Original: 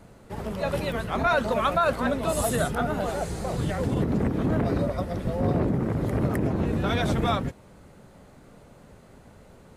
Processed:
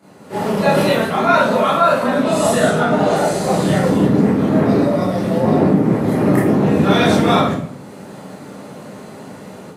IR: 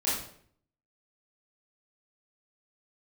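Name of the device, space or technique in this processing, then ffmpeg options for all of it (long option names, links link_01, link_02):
far laptop microphone: -filter_complex "[1:a]atrim=start_sample=2205[link_01];[0:a][link_01]afir=irnorm=-1:irlink=0,highpass=frequency=130:width=0.5412,highpass=frequency=130:width=1.3066,dynaudnorm=framelen=190:gausssize=3:maxgain=9.5dB,asettb=1/sr,asplit=3[link_02][link_03][link_04];[link_02]atrim=end=2.234[link_05];[link_03]atrim=start=2.23:end=3.16,asetpts=PTS-STARTPTS,afade=type=in:duration=0.004:curve=qsin,afade=type=out:start_time=0.926:duration=0.004:curve=qsin,lowpass=8000[link_06];[link_04]atrim=start=3.156[link_07];[link_05][link_06]acrossfade=duration=0.004:curve1=hsin:curve2=qsin[link_08];[link_08][link_07]acrossfade=duration=0.004:curve1=qsin:curve2=hsin,volume=-1dB"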